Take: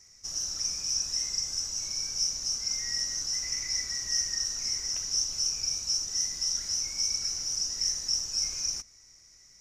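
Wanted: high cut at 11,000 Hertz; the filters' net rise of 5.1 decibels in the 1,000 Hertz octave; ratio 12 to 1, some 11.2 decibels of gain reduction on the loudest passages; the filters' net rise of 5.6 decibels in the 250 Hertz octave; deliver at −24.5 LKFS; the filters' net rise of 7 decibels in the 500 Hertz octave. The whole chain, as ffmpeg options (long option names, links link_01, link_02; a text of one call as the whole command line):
ffmpeg -i in.wav -af "lowpass=11000,equalizer=frequency=250:width_type=o:gain=5.5,equalizer=frequency=500:width_type=o:gain=6,equalizer=frequency=1000:width_type=o:gain=4.5,acompressor=threshold=-36dB:ratio=12,volume=12.5dB" out.wav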